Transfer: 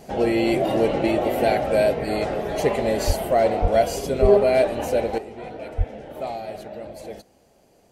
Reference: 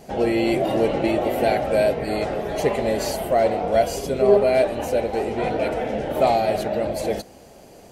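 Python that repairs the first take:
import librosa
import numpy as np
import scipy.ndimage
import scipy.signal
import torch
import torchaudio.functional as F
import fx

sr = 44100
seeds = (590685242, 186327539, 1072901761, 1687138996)

y = fx.fix_deplosive(x, sr, at_s=(3.06, 3.61, 4.21, 5.77))
y = fx.fix_level(y, sr, at_s=5.18, step_db=12.0)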